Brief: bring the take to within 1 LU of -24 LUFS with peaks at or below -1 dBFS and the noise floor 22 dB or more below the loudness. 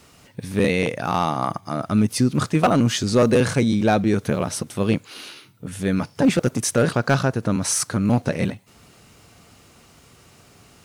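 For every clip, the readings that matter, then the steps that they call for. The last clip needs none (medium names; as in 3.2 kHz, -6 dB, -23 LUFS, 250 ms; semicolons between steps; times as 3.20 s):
clipped samples 0.9%; clipping level -10.0 dBFS; loudness -21.0 LUFS; peak level -10.0 dBFS; loudness target -24.0 LUFS
-> clip repair -10 dBFS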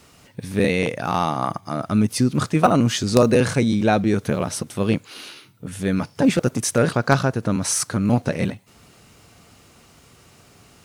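clipped samples 0.0%; loudness -21.0 LUFS; peak level -1.0 dBFS; loudness target -24.0 LUFS
-> trim -3 dB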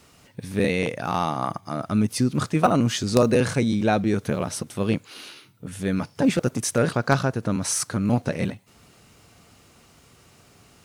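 loudness -24.0 LUFS; peak level -4.0 dBFS; noise floor -55 dBFS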